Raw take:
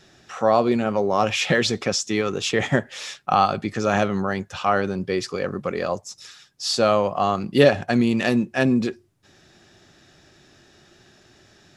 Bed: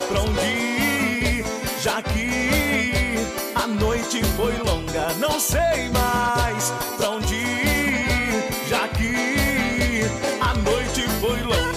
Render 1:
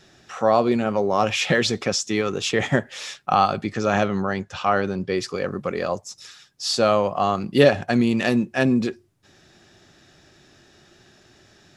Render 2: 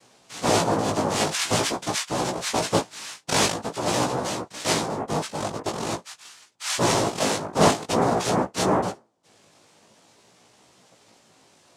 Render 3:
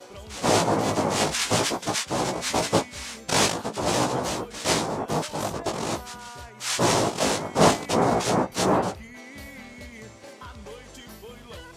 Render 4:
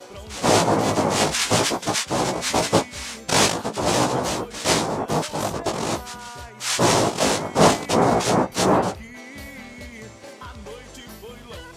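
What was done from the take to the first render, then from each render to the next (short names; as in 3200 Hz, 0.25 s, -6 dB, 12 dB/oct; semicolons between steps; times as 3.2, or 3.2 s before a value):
3.69–5.15 LPF 7500 Hz
noise vocoder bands 2; chorus 0.47 Hz, delay 16 ms, depth 3.3 ms
add bed -21 dB
gain +3.5 dB; limiter -3 dBFS, peak gain reduction 2.5 dB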